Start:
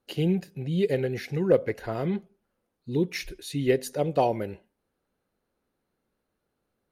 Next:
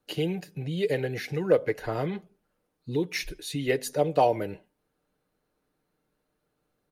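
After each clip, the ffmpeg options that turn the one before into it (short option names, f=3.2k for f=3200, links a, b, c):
-filter_complex "[0:a]aecho=1:1:6.6:0.41,acrossover=split=370|1100[a][b][c];[a]acompressor=threshold=-33dB:ratio=6[d];[d][b][c]amix=inputs=3:normalize=0,volume=1.5dB"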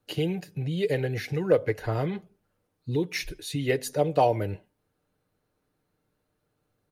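-af "equalizer=f=100:t=o:w=0.59:g=11"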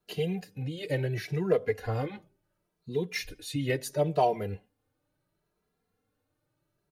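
-filter_complex "[0:a]asplit=2[a][b];[b]adelay=2.6,afreqshift=0.72[c];[a][c]amix=inputs=2:normalize=1"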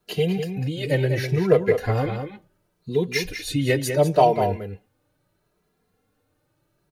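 -filter_complex "[0:a]asplit=2[a][b];[b]adelay=198.3,volume=-7dB,highshelf=f=4k:g=-4.46[c];[a][c]amix=inputs=2:normalize=0,volume=8dB"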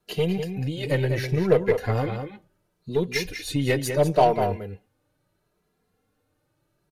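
-af "aresample=32000,aresample=44100,aeval=exprs='0.631*(cos(1*acos(clip(val(0)/0.631,-1,1)))-cos(1*PI/2))+0.0224*(cos(8*acos(clip(val(0)/0.631,-1,1)))-cos(8*PI/2))':c=same,volume=-2dB"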